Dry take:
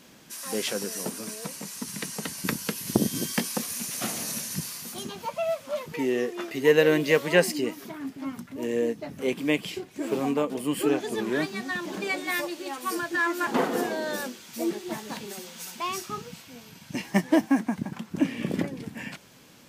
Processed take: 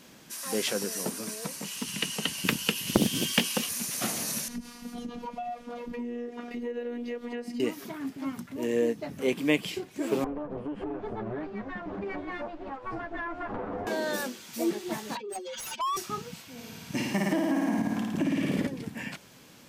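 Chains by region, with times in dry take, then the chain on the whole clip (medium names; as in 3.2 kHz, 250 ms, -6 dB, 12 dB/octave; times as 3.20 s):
1.64–3.69 s: peaking EQ 2.9 kHz +15 dB 0.37 oct + loudspeaker Doppler distortion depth 0.44 ms
4.48–7.60 s: RIAA curve playback + robot voice 240 Hz + compression, threshold -32 dBFS
10.24–13.87 s: comb filter that takes the minimum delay 10 ms + low-pass 1.2 kHz + compression 12:1, threshold -30 dBFS
15.15–15.97 s: spectral contrast enhancement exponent 2.9 + high-pass 830 Hz + overdrive pedal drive 28 dB, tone 3 kHz, clips at -24 dBFS
16.52–18.67 s: flutter echo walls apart 9.4 m, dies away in 1.3 s + compression, threshold -23 dBFS
whole clip: none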